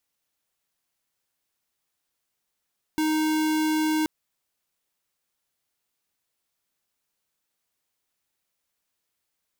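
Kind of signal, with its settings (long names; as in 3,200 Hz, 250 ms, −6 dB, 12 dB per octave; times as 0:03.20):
tone square 311 Hz −23.5 dBFS 1.08 s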